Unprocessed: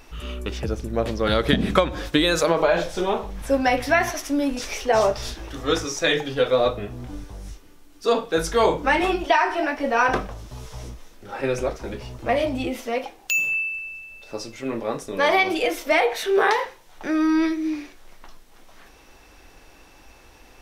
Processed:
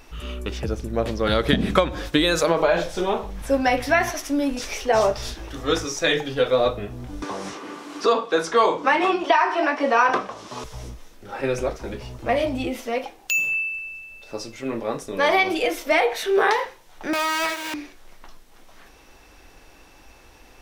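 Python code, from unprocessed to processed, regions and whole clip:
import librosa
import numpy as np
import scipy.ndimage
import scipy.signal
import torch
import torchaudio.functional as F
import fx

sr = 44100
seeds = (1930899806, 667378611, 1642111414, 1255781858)

y = fx.chain(x, sr, fx.bandpass_edges(low_hz=250.0, high_hz=7100.0),
    fx.peak_eq(hz=1100.0, db=8.0, octaves=0.3),
    fx.band_squash(depth_pct=70), at=(7.22, 10.64))
y = fx.chain(y, sr, fx.dead_time(dead_ms=0.22),
    fx.steep_highpass(hz=510.0, slope=36),
    fx.leveller(passes=3), at=(17.13, 17.74))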